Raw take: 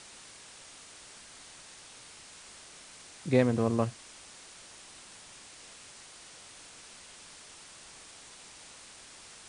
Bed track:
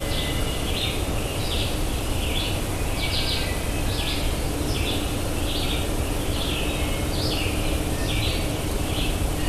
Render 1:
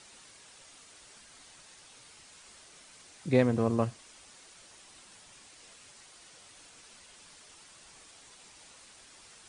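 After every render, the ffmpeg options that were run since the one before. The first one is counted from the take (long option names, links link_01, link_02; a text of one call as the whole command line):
ffmpeg -i in.wav -af "afftdn=noise_reduction=6:noise_floor=-52" out.wav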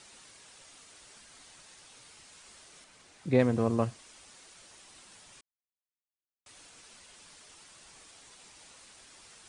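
ffmpeg -i in.wav -filter_complex "[0:a]asettb=1/sr,asplit=3[link_01][link_02][link_03];[link_01]atrim=end=2.844[link_04];[link_02]atrim=start=2.84:end=3.4,asetpts=PTS-STARTPTS,afade=type=in:duration=0.004:curve=qsin,afade=type=out:start_time=0.556:duration=0.004:curve=qsin,highshelf=frequency=3800:gain=-7[link_05];[link_03]atrim=start=3.396[link_06];[link_04][link_05]acrossfade=duration=0.004:curve1=hsin:curve2=qsin[link_07];[link_07][link_06]acrossfade=duration=0.004:curve1=qsin:curve2=hsin,asplit=3[link_08][link_09][link_10];[link_08]atrim=end=5.41,asetpts=PTS-STARTPTS,afade=type=out:start_time=5.406:duration=0.004:curve=hsin[link_11];[link_09]atrim=start=5.41:end=6.46,asetpts=PTS-STARTPTS,volume=0[link_12];[link_10]atrim=start=6.46,asetpts=PTS-STARTPTS,afade=type=in:duration=0.004:curve=hsin[link_13];[link_11][link_12][link_13]concat=n=3:v=0:a=1" out.wav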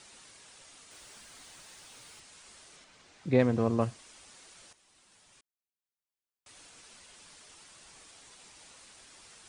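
ffmpeg -i in.wav -filter_complex "[0:a]asettb=1/sr,asplit=3[link_01][link_02][link_03];[link_01]atrim=end=0.914[link_04];[link_02]atrim=start=0.91:end=2.2,asetpts=PTS-STARTPTS,afade=type=in:duration=0.004:curve=qsin,afade=type=out:start_time=1.286:duration=0.004:curve=qsin,aeval=exprs='val(0)+0.5*0.00133*sgn(val(0))':channel_layout=same[link_05];[link_03]atrim=start=2.196[link_06];[link_04][link_05]acrossfade=duration=0.004:curve1=hsin:curve2=qsin[link_07];[link_07][link_06]acrossfade=duration=0.004:curve1=qsin:curve2=hsin,asettb=1/sr,asplit=3[link_08][link_09][link_10];[link_08]atrim=end=2.764[link_11];[link_09]atrim=start=2.76:end=3.81,asetpts=PTS-STARTPTS,afade=type=in:duration=0.004:curve=qsin,afade=type=out:start_time=1.046:duration=0.004:curve=qsin,lowpass=7100[link_12];[link_10]atrim=start=3.806[link_13];[link_11][link_12]acrossfade=duration=0.004:curve1=hsin:curve2=qsin[link_14];[link_14][link_13]acrossfade=duration=0.004:curve1=qsin:curve2=hsin,asplit=2[link_15][link_16];[link_15]atrim=end=4.73,asetpts=PTS-STARTPTS,afade=type=out:start_time=4.726:duration=0.004:curve=hsin:silence=0.223872[link_17];[link_16]atrim=start=4.73,asetpts=PTS-STARTPTS,afade=type=in:duration=1.84:silence=0.223872[link_18];[link_17][link_18]concat=n=2:v=0:a=1" out.wav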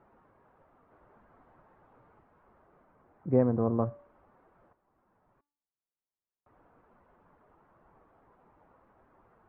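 ffmpeg -i in.wav -af "lowpass=frequency=1200:width=0.5412,lowpass=frequency=1200:width=1.3066,bandreject=frequency=288.8:width_type=h:width=4,bandreject=frequency=577.6:width_type=h:width=4,bandreject=frequency=866.4:width_type=h:width=4,bandreject=frequency=1155.2:width_type=h:width=4,bandreject=frequency=1444:width_type=h:width=4,bandreject=frequency=1732.8:width_type=h:width=4,bandreject=frequency=2021.6:width_type=h:width=4,bandreject=frequency=2310.4:width_type=h:width=4,bandreject=frequency=2599.2:width_type=h:width=4,bandreject=frequency=2888:width_type=h:width=4,bandreject=frequency=3176.8:width_type=h:width=4,bandreject=frequency=3465.6:width_type=h:width=4,bandreject=frequency=3754.4:width_type=h:width=4,bandreject=frequency=4043.2:width_type=h:width=4,bandreject=frequency=4332:width_type=h:width=4,bandreject=frequency=4620.8:width_type=h:width=4,bandreject=frequency=4909.6:width_type=h:width=4,bandreject=frequency=5198.4:width_type=h:width=4,bandreject=frequency=5487.2:width_type=h:width=4,bandreject=frequency=5776:width_type=h:width=4,bandreject=frequency=6064.8:width_type=h:width=4,bandreject=frequency=6353.6:width_type=h:width=4,bandreject=frequency=6642.4:width_type=h:width=4,bandreject=frequency=6931.2:width_type=h:width=4,bandreject=frequency=7220:width_type=h:width=4,bandreject=frequency=7508.8:width_type=h:width=4,bandreject=frequency=7797.6:width_type=h:width=4,bandreject=frequency=8086.4:width_type=h:width=4,bandreject=frequency=8375.2:width_type=h:width=4" out.wav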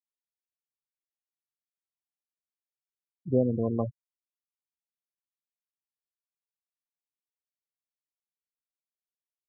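ffmpeg -i in.wav -af "lowpass=1600,afftfilt=real='re*gte(hypot(re,im),0.0794)':imag='im*gte(hypot(re,im),0.0794)':win_size=1024:overlap=0.75" out.wav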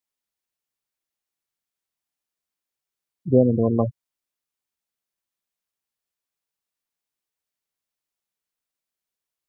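ffmpeg -i in.wav -af "volume=8dB" out.wav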